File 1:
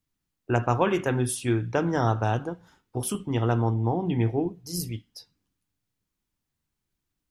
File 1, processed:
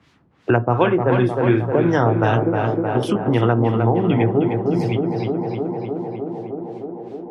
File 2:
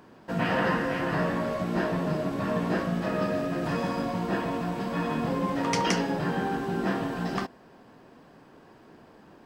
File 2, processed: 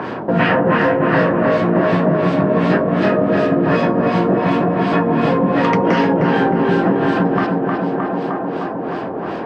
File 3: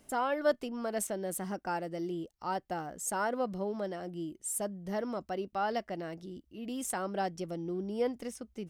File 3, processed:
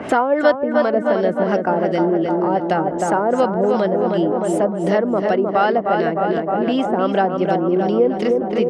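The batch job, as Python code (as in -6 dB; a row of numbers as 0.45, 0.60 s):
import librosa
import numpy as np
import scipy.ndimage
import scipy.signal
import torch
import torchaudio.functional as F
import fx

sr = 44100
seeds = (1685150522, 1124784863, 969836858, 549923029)

y = scipy.signal.sosfilt(scipy.signal.butter(2, 120.0, 'highpass', fs=sr, output='sos'), x)
y = fx.filter_lfo_lowpass(y, sr, shape='sine', hz=2.7, low_hz=560.0, high_hz=3800.0, q=0.84)
y = fx.peak_eq(y, sr, hz=210.0, db=-4.5, octaves=1.4)
y = fx.echo_tape(y, sr, ms=308, feedback_pct=72, wet_db=-4, lp_hz=1800.0, drive_db=13.0, wow_cents=23)
y = fx.dynamic_eq(y, sr, hz=860.0, q=0.9, threshold_db=-42.0, ratio=4.0, max_db=-4)
y = fx.band_squash(y, sr, depth_pct=70)
y = librosa.util.normalize(y) * 10.0 ** (-3 / 20.0)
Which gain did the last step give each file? +11.0, +15.5, +19.5 dB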